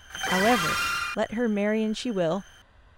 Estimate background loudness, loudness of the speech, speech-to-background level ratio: −27.0 LKFS, −27.5 LKFS, −0.5 dB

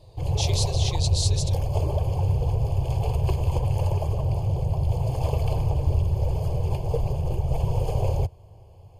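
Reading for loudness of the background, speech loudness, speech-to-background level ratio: −25.5 LKFS, −30.0 LKFS, −4.5 dB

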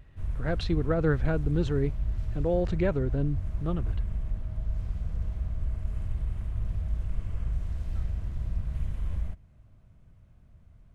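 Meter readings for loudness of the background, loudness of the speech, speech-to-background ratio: −34.5 LKFS, −29.5 LKFS, 5.0 dB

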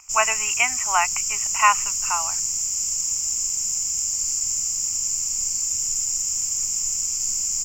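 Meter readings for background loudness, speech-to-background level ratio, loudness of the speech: −21.5 LKFS, −1.5 dB, −23.0 LKFS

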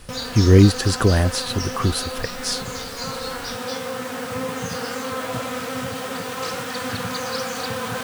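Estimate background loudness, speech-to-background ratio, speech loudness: −28.0 LKFS, 9.0 dB, −19.0 LKFS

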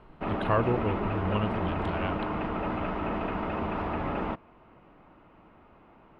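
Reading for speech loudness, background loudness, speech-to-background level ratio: −32.0 LKFS, −32.0 LKFS, 0.0 dB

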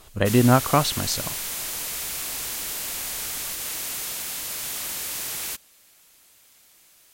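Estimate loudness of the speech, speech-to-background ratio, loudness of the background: −21.0 LKFS, 7.0 dB, −28.0 LKFS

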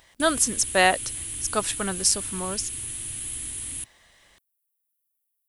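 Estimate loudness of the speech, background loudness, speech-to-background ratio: −24.0 LKFS, −31.0 LKFS, 7.0 dB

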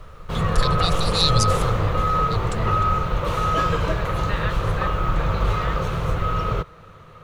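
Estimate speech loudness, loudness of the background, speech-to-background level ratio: −25.5 LKFS, −23.0 LKFS, −2.5 dB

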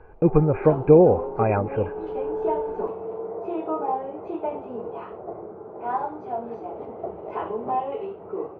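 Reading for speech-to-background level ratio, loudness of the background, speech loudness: 11.0 dB, −30.5 LKFS, −19.5 LKFS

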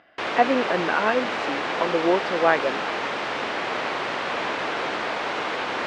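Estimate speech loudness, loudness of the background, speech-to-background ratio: −24.0 LKFS, −26.5 LKFS, 2.5 dB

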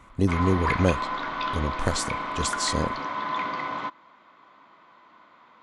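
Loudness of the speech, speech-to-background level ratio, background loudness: −27.5 LKFS, 2.5 dB, −30.0 LKFS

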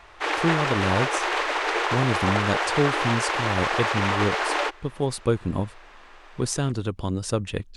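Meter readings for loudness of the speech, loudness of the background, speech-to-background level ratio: −27.0 LKFS, −24.5 LKFS, −2.5 dB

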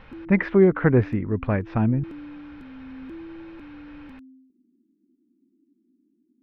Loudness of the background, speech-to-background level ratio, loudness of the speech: −41.5 LKFS, 20.0 dB, −21.5 LKFS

